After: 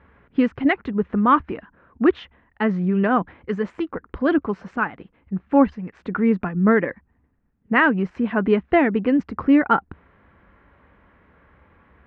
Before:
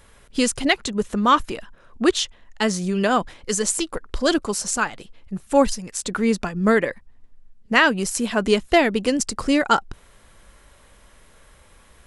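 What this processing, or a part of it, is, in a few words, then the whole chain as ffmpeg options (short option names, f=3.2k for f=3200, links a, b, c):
bass cabinet: -af "highpass=72,equalizer=f=73:t=q:w=4:g=7,equalizer=f=180:t=q:w=4:g=4,equalizer=f=280:t=q:w=4:g=5,equalizer=f=590:t=q:w=4:g=-4,lowpass=f=2.1k:w=0.5412,lowpass=f=2.1k:w=1.3066"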